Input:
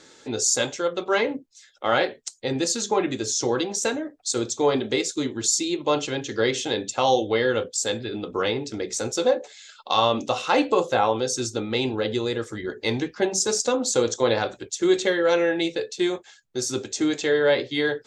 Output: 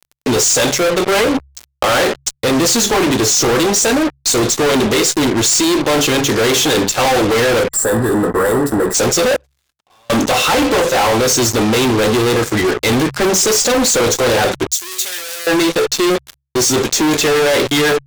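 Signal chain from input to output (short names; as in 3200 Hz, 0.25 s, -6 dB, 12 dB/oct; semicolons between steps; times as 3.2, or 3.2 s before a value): fuzz box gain 41 dB, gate -41 dBFS; 7.7–8.95 spectral gain 2000–7200 Hz -16 dB; 9.36–10.1 flipped gate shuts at -21 dBFS, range -38 dB; 14.68–15.47 differentiator; de-hum 68.02 Hz, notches 2; 1.2–1.85 three-band squash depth 70%; gain +1.5 dB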